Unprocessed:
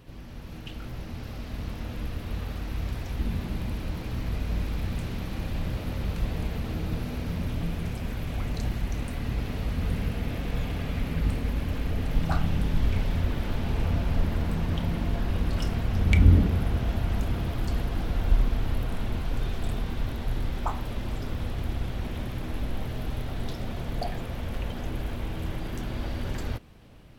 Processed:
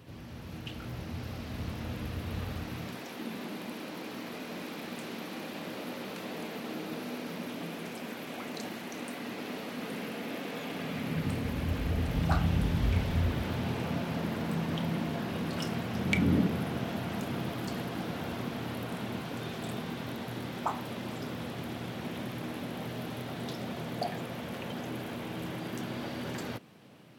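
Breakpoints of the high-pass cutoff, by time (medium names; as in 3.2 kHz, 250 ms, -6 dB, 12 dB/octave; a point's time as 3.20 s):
high-pass 24 dB/octave
2.59 s 74 Hz
3.07 s 230 Hz
10.62 s 230 Hz
11.84 s 57 Hz
13.18 s 57 Hz
13.89 s 140 Hz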